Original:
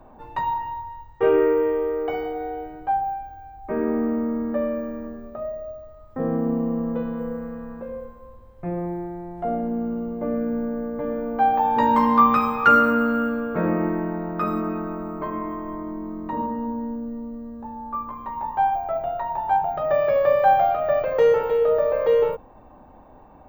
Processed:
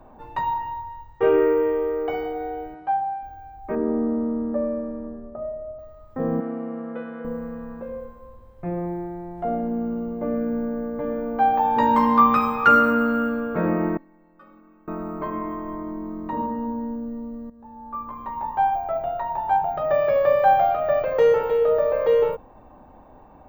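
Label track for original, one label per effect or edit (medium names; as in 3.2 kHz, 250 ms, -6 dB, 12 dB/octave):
2.740000	3.230000	cabinet simulation 110–6000 Hz, peaks and dips at 120 Hz -9 dB, 260 Hz -5 dB, 440 Hz -8 dB
3.750000	5.790000	low-pass 1 kHz
6.400000	7.250000	cabinet simulation 340–4500 Hz, peaks and dips at 480 Hz -4 dB, 990 Hz -8 dB, 1.4 kHz +7 dB, 2.2 kHz +5 dB, 4.1 kHz -5 dB
13.970000	14.880000	inharmonic resonator 270 Hz, decay 0.51 s, inharmonicity 0.008
17.500000	18.220000	fade in, from -14.5 dB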